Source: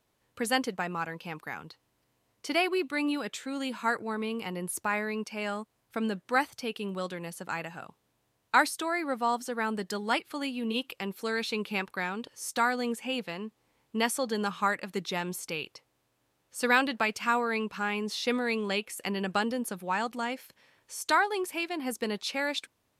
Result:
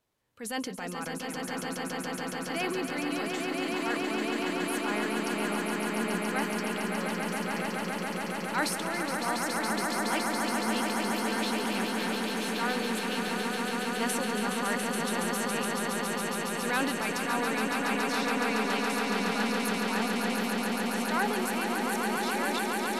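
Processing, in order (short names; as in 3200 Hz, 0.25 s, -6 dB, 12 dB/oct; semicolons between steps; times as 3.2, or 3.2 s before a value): transient shaper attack -6 dB, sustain +7 dB; swelling echo 0.14 s, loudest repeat 8, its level -5.5 dB; gain -5 dB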